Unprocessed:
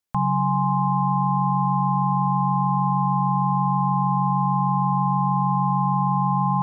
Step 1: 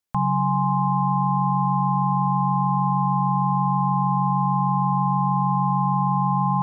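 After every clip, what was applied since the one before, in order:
no processing that can be heard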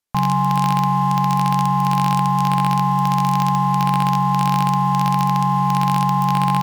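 single-tap delay 171 ms −20.5 dB
downsampling to 32,000 Hz
in parallel at −11 dB: log-companded quantiser 2 bits
on the sum: level +2 dB

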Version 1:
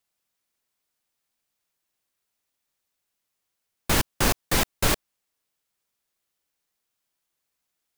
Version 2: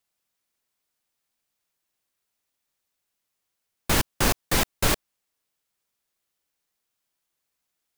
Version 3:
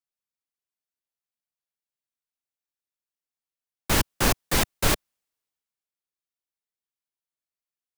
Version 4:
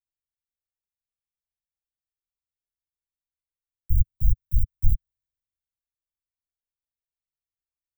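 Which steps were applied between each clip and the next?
no processing that can be heard
multiband upward and downward expander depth 40%
inverse Chebyshev band-stop filter 490–9,200 Hz, stop band 70 dB; low-shelf EQ 160 Hz +10 dB

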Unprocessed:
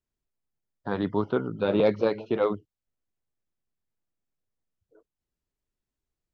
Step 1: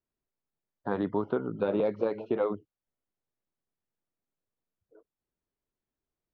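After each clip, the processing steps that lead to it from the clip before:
low-pass filter 1,100 Hz 6 dB per octave
low-shelf EQ 150 Hz −11 dB
downward compressor, threshold −27 dBFS, peak gain reduction 8.5 dB
level +3 dB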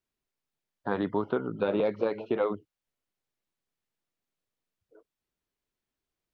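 parametric band 3,000 Hz +6 dB 2.4 octaves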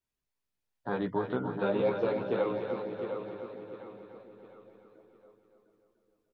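repeating echo 706 ms, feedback 38%, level −8 dB
multi-voice chorus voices 6, 0.44 Hz, delay 16 ms, depth 1.2 ms
echo with a time of its own for lows and highs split 400 Hz, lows 409 ms, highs 293 ms, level −6 dB

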